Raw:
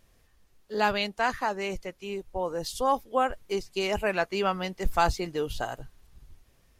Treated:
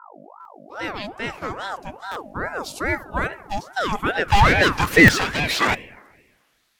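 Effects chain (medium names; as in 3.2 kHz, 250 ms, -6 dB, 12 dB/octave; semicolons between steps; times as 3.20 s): fade-in on the opening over 2.01 s; 4.28–5.75 s: overdrive pedal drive 35 dB, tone 2.3 kHz, clips at -10.5 dBFS; in parallel at -10 dB: hard clipper -19.5 dBFS, distortion -13 dB; on the sum: hum 50 Hz, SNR 17 dB; high-pass sweep 170 Hz -> 2.7 kHz, 3.17–6.71 s; on a send at -15 dB: reverberation RT60 1.4 s, pre-delay 4 ms; on the sum: buffer glitch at 0.40/2.11/5.03 s, samples 256, times 8; ring modulator with a swept carrier 790 Hz, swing 50%, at 2.4 Hz; trim +1.5 dB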